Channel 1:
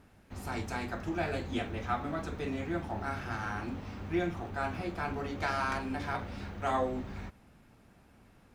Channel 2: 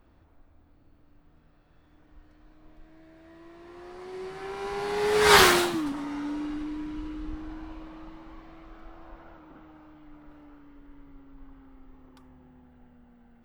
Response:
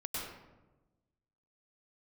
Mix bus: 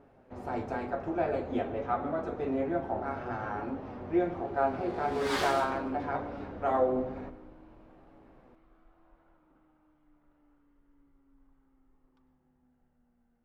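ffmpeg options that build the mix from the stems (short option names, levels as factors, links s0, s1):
-filter_complex "[0:a]lowpass=f=2000:p=1,equalizer=f=550:w=0.61:g=14.5,flanger=delay=7.1:depth=1.3:regen=54:speed=1.1:shape=triangular,volume=0.708,asplit=2[s0][s1];[s1]volume=0.211[s2];[1:a]adynamicsmooth=sensitivity=7:basefreq=3700,volume=0.141,asplit=2[s3][s4];[s4]volume=0.237[s5];[2:a]atrim=start_sample=2205[s6];[s2][s5]amix=inputs=2:normalize=0[s7];[s7][s6]afir=irnorm=-1:irlink=0[s8];[s0][s3][s8]amix=inputs=3:normalize=0"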